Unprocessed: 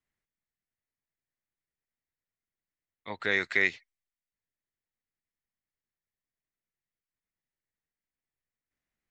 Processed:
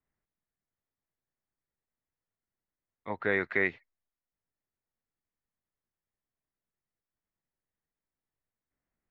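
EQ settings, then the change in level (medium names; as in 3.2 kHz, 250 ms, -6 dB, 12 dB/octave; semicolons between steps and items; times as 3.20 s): low-pass 1.4 kHz 12 dB/octave; +3.5 dB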